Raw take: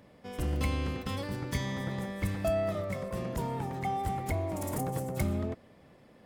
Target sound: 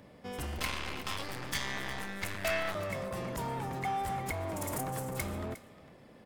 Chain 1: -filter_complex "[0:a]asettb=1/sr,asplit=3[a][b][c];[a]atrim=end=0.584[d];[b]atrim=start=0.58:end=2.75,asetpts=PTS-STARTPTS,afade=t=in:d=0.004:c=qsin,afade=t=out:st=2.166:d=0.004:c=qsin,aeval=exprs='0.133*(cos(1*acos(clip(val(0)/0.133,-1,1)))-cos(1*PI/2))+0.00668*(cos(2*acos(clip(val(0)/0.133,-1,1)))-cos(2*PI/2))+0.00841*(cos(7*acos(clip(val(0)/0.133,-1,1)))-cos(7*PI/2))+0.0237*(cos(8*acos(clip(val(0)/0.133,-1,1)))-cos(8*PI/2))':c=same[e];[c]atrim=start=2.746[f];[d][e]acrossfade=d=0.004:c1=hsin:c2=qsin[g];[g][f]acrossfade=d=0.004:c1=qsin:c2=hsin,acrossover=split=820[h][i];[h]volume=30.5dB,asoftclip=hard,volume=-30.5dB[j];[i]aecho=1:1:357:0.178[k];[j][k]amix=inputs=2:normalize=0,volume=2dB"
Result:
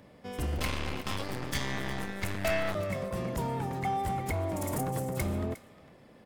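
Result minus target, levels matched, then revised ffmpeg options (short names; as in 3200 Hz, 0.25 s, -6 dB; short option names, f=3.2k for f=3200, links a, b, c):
overloaded stage: distortion -5 dB
-filter_complex "[0:a]asettb=1/sr,asplit=3[a][b][c];[a]atrim=end=0.584[d];[b]atrim=start=0.58:end=2.75,asetpts=PTS-STARTPTS,afade=t=in:d=0.004:c=qsin,afade=t=out:st=2.166:d=0.004:c=qsin,aeval=exprs='0.133*(cos(1*acos(clip(val(0)/0.133,-1,1)))-cos(1*PI/2))+0.00668*(cos(2*acos(clip(val(0)/0.133,-1,1)))-cos(2*PI/2))+0.00841*(cos(7*acos(clip(val(0)/0.133,-1,1)))-cos(7*PI/2))+0.0237*(cos(8*acos(clip(val(0)/0.133,-1,1)))-cos(8*PI/2))':c=same[e];[c]atrim=start=2.746[f];[d][e]acrossfade=d=0.004:c1=hsin:c2=qsin[g];[g][f]acrossfade=d=0.004:c1=qsin:c2=hsin,acrossover=split=820[h][i];[h]volume=39dB,asoftclip=hard,volume=-39dB[j];[i]aecho=1:1:357:0.178[k];[j][k]amix=inputs=2:normalize=0,volume=2dB"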